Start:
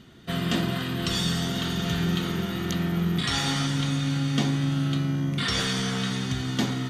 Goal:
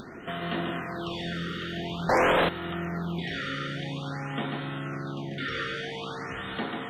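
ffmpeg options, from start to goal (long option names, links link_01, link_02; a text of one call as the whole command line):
ffmpeg -i in.wav -filter_complex "[0:a]bandreject=frequency=64.22:width_type=h:width=4,bandreject=frequency=128.44:width_type=h:width=4,bandreject=frequency=192.66:width_type=h:width=4,bandreject=frequency=256.88:width_type=h:width=4,bandreject=frequency=321.1:width_type=h:width=4,bandreject=frequency=385.32:width_type=h:width=4,bandreject=frequency=449.54:width_type=h:width=4,bandreject=frequency=513.76:width_type=h:width=4,bandreject=frequency=577.98:width_type=h:width=4,bandreject=frequency=642.2:width_type=h:width=4,bandreject=frequency=706.42:width_type=h:width=4,bandreject=frequency=770.64:width_type=h:width=4,asplit=2[link_01][link_02];[link_02]aecho=0:1:791:0.266[link_03];[link_01][link_03]amix=inputs=2:normalize=0,acrossover=split=3500[link_04][link_05];[link_05]acompressor=threshold=-37dB:ratio=4:attack=1:release=60[link_06];[link_04][link_06]amix=inputs=2:normalize=0,highshelf=frequency=4100:gain=-11.5,asplit=2[link_07][link_08];[link_08]aecho=0:1:141:0.562[link_09];[link_07][link_09]amix=inputs=2:normalize=0,asettb=1/sr,asplit=3[link_10][link_11][link_12];[link_10]atrim=end=2.094[link_13];[link_11]atrim=start=2.09:end=2.49,asetpts=PTS-STARTPTS,afade=type=in:duration=0.004:curve=qsin,afade=type=out:start_time=0.396:duration=0.004:curve=qsin,aeval=exprs='0.158*sin(PI/2*3.98*val(0)/0.158)':channel_layout=same[link_14];[link_12]atrim=start=2.486[link_15];[link_13][link_14]acrossfade=duration=0.004:curve1=hsin:curve2=qsin[link_16];[link_16][link_15]acrossfade=duration=0.004:curve1=qsin:curve2=hsin,bass=frequency=250:gain=-13,treble=frequency=4000:gain=-10,acompressor=mode=upward:threshold=-30dB:ratio=2.5,afftfilt=real='re*(1-between(b*sr/1024,810*pow(6200/810,0.5+0.5*sin(2*PI*0.49*pts/sr))/1.41,810*pow(6200/810,0.5+0.5*sin(2*PI*0.49*pts/sr))*1.41))':imag='im*(1-between(b*sr/1024,810*pow(6200/810,0.5+0.5*sin(2*PI*0.49*pts/sr))/1.41,810*pow(6200/810,0.5+0.5*sin(2*PI*0.49*pts/sr))*1.41))':win_size=1024:overlap=0.75" out.wav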